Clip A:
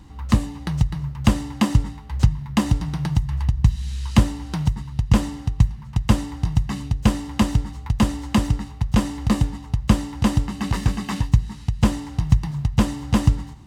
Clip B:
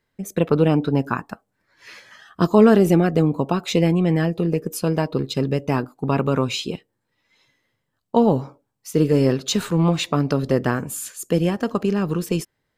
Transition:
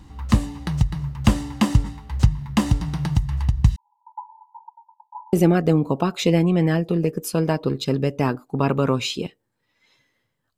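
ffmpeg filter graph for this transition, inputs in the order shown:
ffmpeg -i cue0.wav -i cue1.wav -filter_complex "[0:a]asettb=1/sr,asplit=3[link_01][link_02][link_03];[link_01]atrim=end=3.764[link_04];[link_02]atrim=start=3.76:end=5.33,asetpts=PTS-STARTPTS,afade=type=in:duration=0.004:curve=qsin,afade=type=out:start_time=1.566:duration=0.004:curve=qsin,asuperpass=centerf=910:order=20:qfactor=5.1[link_05];[link_03]atrim=start=5.326[link_06];[link_04][link_05]acrossfade=duration=0.004:curve1=hsin:curve2=qsin[link_07];[link_07][link_06]acrossfade=duration=0.004:curve1=qsin:curve2=hsin,apad=whole_dur=10.57,atrim=end=10.57,atrim=end=5.332[link_08];[1:a]atrim=start=2.818:end=8.06[link_09];[link_08][link_09]acrossfade=duration=0.004:curve1=hsin:curve2=hsin" out.wav

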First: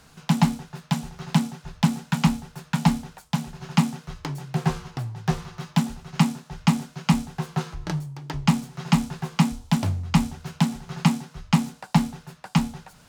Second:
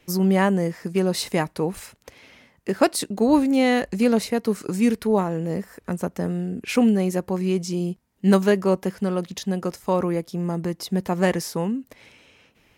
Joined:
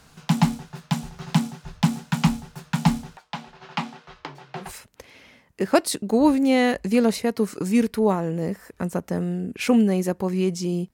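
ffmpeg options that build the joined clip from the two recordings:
ffmpeg -i cue0.wav -i cue1.wav -filter_complex "[0:a]asettb=1/sr,asplit=3[link_01][link_02][link_03];[link_01]atrim=end=3.174[link_04];[link_02]atrim=start=3.17:end=4.72,asetpts=PTS-STARTPTS,afade=type=in:duration=0.004:curve=qsin,afade=type=out:start_time=1.546:duration=0.004:curve=qsin,acrossover=split=330 4700:gain=0.141 1 0.0891[link_05][link_06][link_07];[link_05][link_06][link_07]amix=inputs=3:normalize=0[link_08];[link_03]atrim=start=4.716[link_09];[link_04][link_08]acrossfade=duration=0.004:curve1=hsin:curve2=qsin[link_10];[link_10][link_09]acrossfade=duration=0.004:curve1=qsin:curve2=hsin,apad=whole_dur=10.93,atrim=end=10.93,atrim=end=4.72,asetpts=PTS-STARTPTS[link_11];[1:a]atrim=start=1.66:end=8.01,asetpts=PTS-STARTPTS[link_12];[link_11][link_12]acrossfade=duration=0.14:curve1=tri:curve2=tri" out.wav

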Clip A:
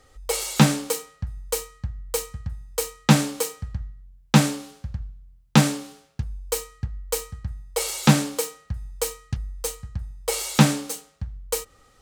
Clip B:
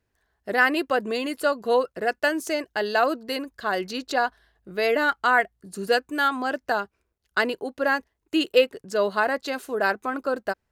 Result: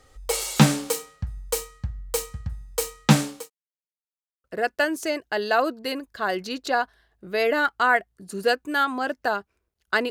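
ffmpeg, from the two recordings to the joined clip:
ffmpeg -i cue0.wav -i cue1.wav -filter_complex "[0:a]apad=whole_dur=10.1,atrim=end=10.1,asplit=2[link_01][link_02];[link_01]atrim=end=3.5,asetpts=PTS-STARTPTS,afade=type=out:start_time=2.97:duration=0.53:curve=qsin[link_03];[link_02]atrim=start=3.5:end=4.44,asetpts=PTS-STARTPTS,volume=0[link_04];[1:a]atrim=start=1.88:end=7.54,asetpts=PTS-STARTPTS,afade=type=in:duration=0.004:curve=hsin[link_05];[link_03][link_04][link_05]concat=n=3:v=0:a=1" out.wav

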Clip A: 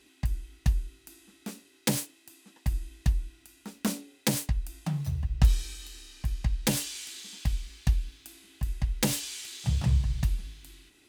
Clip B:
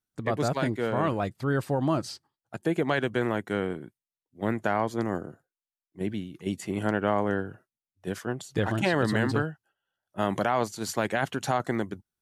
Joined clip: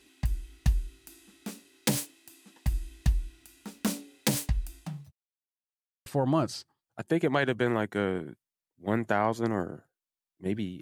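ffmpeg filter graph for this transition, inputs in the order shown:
ffmpeg -i cue0.wav -i cue1.wav -filter_complex "[0:a]apad=whole_dur=10.81,atrim=end=10.81,asplit=2[link_01][link_02];[link_01]atrim=end=5.12,asetpts=PTS-STARTPTS,afade=type=out:start_time=4.61:duration=0.51[link_03];[link_02]atrim=start=5.12:end=6.06,asetpts=PTS-STARTPTS,volume=0[link_04];[1:a]atrim=start=1.61:end=6.36,asetpts=PTS-STARTPTS,afade=type=in:duration=0.004:curve=hsin[link_05];[link_03][link_04][link_05]concat=n=3:v=0:a=1" out.wav

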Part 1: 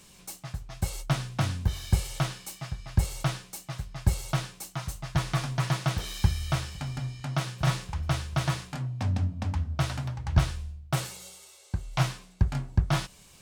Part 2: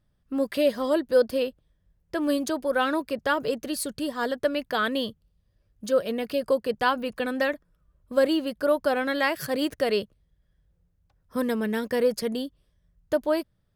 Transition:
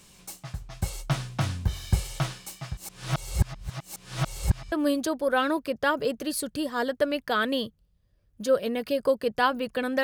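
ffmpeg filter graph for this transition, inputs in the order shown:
ffmpeg -i cue0.wav -i cue1.wav -filter_complex "[0:a]apad=whole_dur=10.03,atrim=end=10.03,asplit=2[link_01][link_02];[link_01]atrim=end=2.772[link_03];[link_02]atrim=start=2.768:end=4.722,asetpts=PTS-STARTPTS,areverse[link_04];[1:a]atrim=start=2.148:end=7.46[link_05];[link_03][link_04]acrossfade=duration=0.004:curve1=hsin:curve2=hsin[link_06];[link_06][link_05]acrossfade=duration=0.004:curve1=hsin:curve2=hsin" out.wav

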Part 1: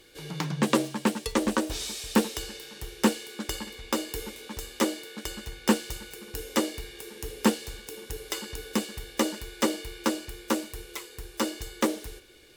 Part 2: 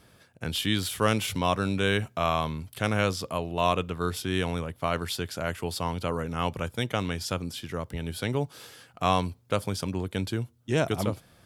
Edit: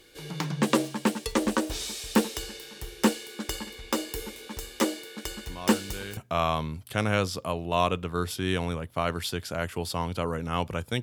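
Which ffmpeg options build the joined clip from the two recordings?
ffmpeg -i cue0.wav -i cue1.wav -filter_complex "[1:a]asplit=2[link_01][link_02];[0:a]apad=whole_dur=11.02,atrim=end=11.02,atrim=end=6.172[link_03];[link_02]atrim=start=2.028:end=6.88[link_04];[link_01]atrim=start=1.34:end=2.03,asetpts=PTS-STARTPTS,volume=-14dB,afade=type=in:duration=0.004:curve=hsin,afade=type=out:start_time=0.686:duration=0.004:curve=hsin,adelay=5480[link_05];[link_03][link_04]acrossfade=duration=0.004:curve1=hsin:curve2=hsin[link_06];[link_06][link_05]amix=inputs=2:normalize=0" out.wav

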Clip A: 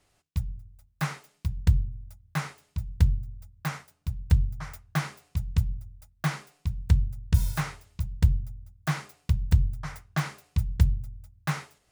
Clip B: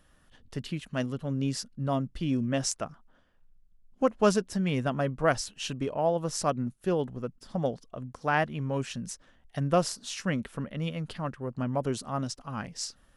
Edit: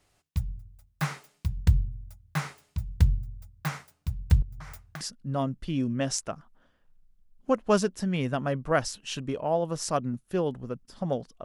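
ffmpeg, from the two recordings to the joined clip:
ffmpeg -i cue0.wav -i cue1.wav -filter_complex "[0:a]asettb=1/sr,asplit=3[link_01][link_02][link_03];[link_01]atrim=end=4.424[link_04];[link_02]atrim=start=4.42:end=5.01,asetpts=PTS-STARTPTS,afade=type=in:duration=0.004:curve=qsin,afade=type=out:start_time=0.586:duration=0.004:curve=qsin,acompressor=threshold=-37dB:ratio=8:attack=3.2:release=140:knee=1:detection=peak[link_05];[link_03]atrim=start=5.006[link_06];[link_04][link_05]acrossfade=duration=0.004:curve1=hsin:curve2=qsin[link_07];[link_07][link_06]acrossfade=duration=0.004:curve1=qsin:curve2=hsin,apad=whole_dur=11.44,atrim=end=11.44,atrim=end=5.012[link_08];[1:a]atrim=start=1.538:end=7.97[link_09];[link_08][link_09]acrossfade=duration=0.004:curve1=hsin:curve2=hsin" out.wav

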